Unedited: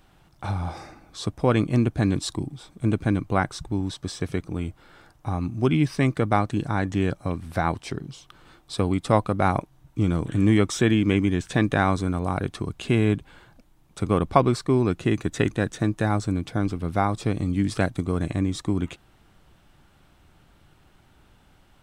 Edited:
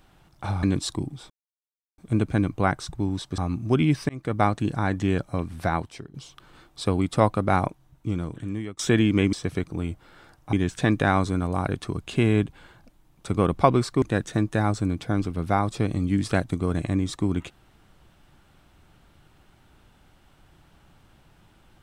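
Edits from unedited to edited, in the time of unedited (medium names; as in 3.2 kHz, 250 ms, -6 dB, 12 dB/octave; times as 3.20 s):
0.63–2.03 s: delete
2.70 s: insert silence 0.68 s
4.10–5.30 s: move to 11.25 s
6.01–6.34 s: fade in
7.57–8.06 s: fade out linear, to -17 dB
9.44–10.71 s: fade out, to -22 dB
14.74–15.48 s: delete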